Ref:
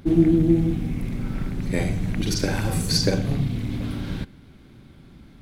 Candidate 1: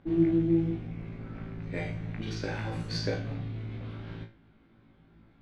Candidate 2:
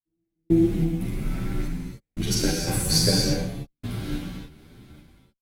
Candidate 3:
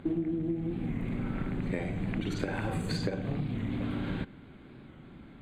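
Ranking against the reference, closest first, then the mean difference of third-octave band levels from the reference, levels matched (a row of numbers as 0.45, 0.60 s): 1, 3, 2; 4.5, 6.0, 8.5 dB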